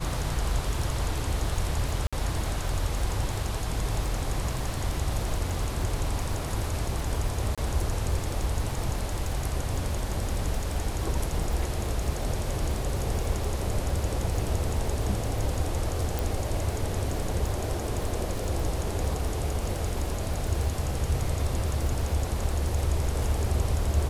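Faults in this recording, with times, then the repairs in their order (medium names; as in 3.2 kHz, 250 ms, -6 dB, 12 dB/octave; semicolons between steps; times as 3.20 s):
crackle 39 per s -31 dBFS
2.07–2.13 s: dropout 56 ms
7.55–7.58 s: dropout 26 ms
16.19 s: pop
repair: de-click; interpolate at 2.07 s, 56 ms; interpolate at 7.55 s, 26 ms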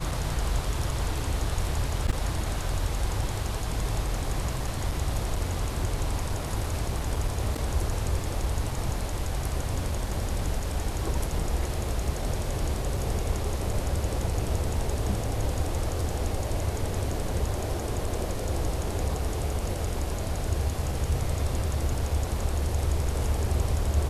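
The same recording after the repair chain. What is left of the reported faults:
nothing left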